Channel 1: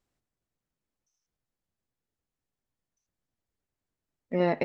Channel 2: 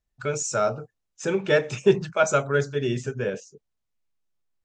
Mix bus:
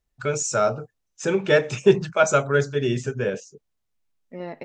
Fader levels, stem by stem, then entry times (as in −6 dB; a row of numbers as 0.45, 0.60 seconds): −9.0, +2.5 decibels; 0.00, 0.00 seconds